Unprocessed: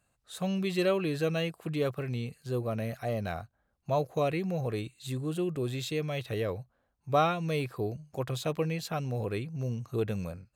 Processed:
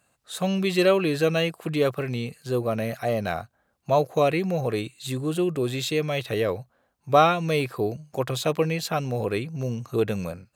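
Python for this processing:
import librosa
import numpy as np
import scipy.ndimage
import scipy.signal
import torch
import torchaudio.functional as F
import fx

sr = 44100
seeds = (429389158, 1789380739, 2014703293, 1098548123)

y = fx.highpass(x, sr, hz=190.0, slope=6)
y = F.gain(torch.from_numpy(y), 8.5).numpy()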